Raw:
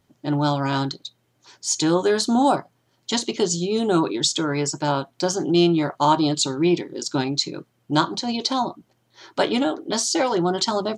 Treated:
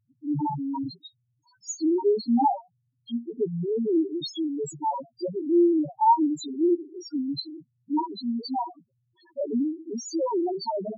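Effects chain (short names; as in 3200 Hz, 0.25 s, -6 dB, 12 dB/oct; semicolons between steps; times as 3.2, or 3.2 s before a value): dynamic EQ 870 Hz, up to +5 dB, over -35 dBFS, Q 4.2; loudest bins only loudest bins 1; gain +2.5 dB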